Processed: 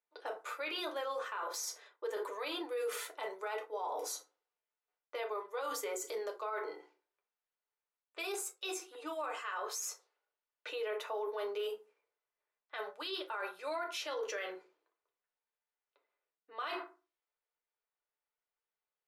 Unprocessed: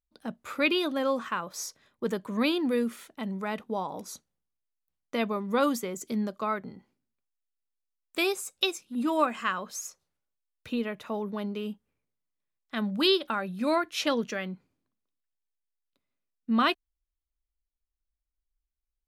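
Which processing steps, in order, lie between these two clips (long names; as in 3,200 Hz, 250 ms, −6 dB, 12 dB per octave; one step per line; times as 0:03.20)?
elliptic high-pass filter 390 Hz, stop band 40 dB
feedback delay network reverb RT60 0.31 s, low-frequency decay 1.25×, high-frequency decay 0.6×, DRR 1 dB
reversed playback
downward compressor 16 to 1, threshold −36 dBFS, peak gain reduction 19.5 dB
reversed playback
brickwall limiter −35.5 dBFS, peak gain reduction 9 dB
low-pass that shuts in the quiet parts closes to 2,300 Hz, open at −44.5 dBFS
level +5 dB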